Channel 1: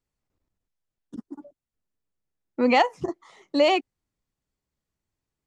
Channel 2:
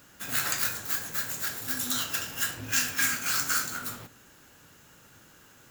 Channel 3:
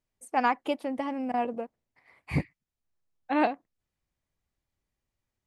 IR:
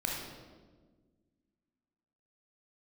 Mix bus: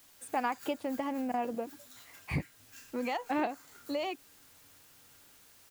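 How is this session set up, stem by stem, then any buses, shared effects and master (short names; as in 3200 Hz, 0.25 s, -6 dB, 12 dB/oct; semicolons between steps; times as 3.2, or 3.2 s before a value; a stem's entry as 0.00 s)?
-11.5 dB, 0.35 s, no send, dry
-12.0 dB, 0.00 s, no send, AGC gain up to 9 dB; resonator 94 Hz, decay 0.26 s, harmonics odd, mix 80%; auto duck -14 dB, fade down 1.95 s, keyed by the third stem
+1.0 dB, 0.00 s, no send, dry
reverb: off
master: requantised 10-bit, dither triangular; compressor 2.5:1, threshold -32 dBFS, peak gain reduction 9 dB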